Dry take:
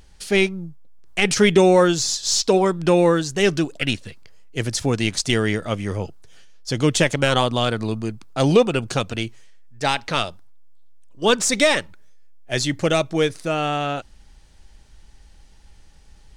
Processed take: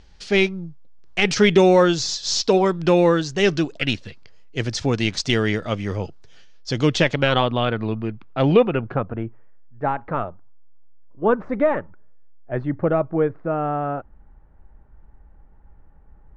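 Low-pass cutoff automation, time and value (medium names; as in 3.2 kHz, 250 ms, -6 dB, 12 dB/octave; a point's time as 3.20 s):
low-pass 24 dB/octave
6.82 s 5.9 kHz
7.59 s 3 kHz
8.56 s 3 kHz
9.07 s 1.4 kHz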